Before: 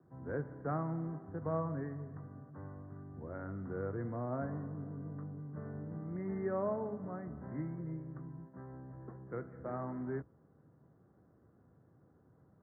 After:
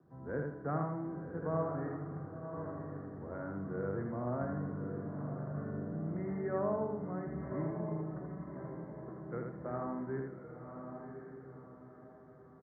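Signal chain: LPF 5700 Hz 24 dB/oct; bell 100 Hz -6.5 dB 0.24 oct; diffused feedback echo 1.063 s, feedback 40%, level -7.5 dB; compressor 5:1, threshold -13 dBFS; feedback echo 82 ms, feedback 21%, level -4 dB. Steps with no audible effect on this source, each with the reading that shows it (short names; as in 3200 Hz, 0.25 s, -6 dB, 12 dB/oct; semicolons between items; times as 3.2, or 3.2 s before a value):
LPF 5700 Hz: input band ends at 1700 Hz; compressor, threshold -13 dBFS: input peak -24.0 dBFS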